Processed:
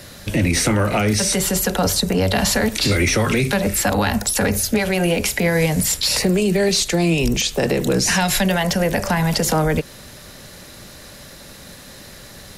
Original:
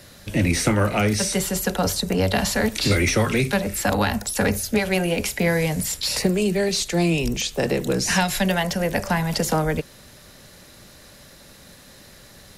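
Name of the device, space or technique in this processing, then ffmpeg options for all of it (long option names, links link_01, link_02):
clipper into limiter: -af "asoftclip=type=hard:threshold=-10dB,alimiter=limit=-16.5dB:level=0:latency=1:release=87,volume=7dB"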